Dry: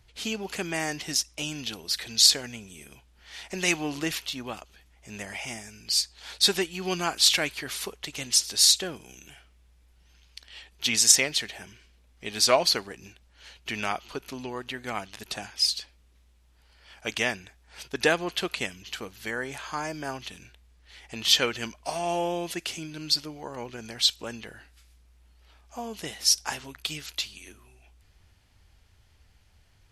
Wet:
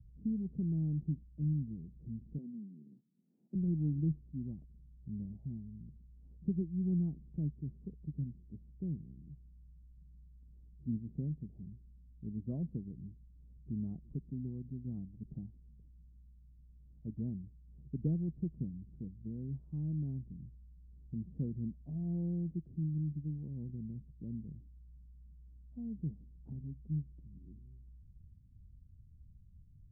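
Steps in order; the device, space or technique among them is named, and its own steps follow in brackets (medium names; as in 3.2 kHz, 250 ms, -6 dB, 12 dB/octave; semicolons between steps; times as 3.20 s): 2.38–3.55 s: steep high-pass 190 Hz 36 dB/octave; the neighbour's flat through the wall (low-pass 220 Hz 24 dB/octave; peaking EQ 150 Hz +7.5 dB 0.44 oct); trim +2.5 dB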